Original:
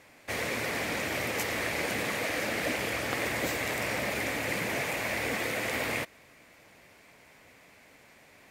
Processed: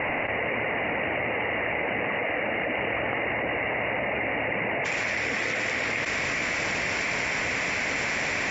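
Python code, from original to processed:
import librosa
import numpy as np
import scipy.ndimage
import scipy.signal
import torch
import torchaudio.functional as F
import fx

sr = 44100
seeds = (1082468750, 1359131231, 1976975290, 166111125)

y = fx.cheby_ripple(x, sr, hz=fx.steps((0.0, 2900.0), (4.84, 7500.0)), ripple_db=6)
y = fx.spec_gate(y, sr, threshold_db=-30, keep='strong')
y = fx.env_flatten(y, sr, amount_pct=100)
y = y * librosa.db_to_amplitude(3.0)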